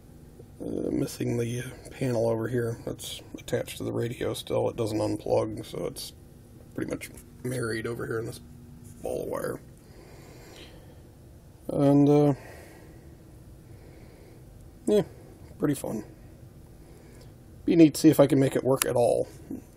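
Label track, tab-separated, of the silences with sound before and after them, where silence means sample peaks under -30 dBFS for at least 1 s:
9.560000	11.690000	silence
12.340000	14.880000	silence
16.000000	17.680000	silence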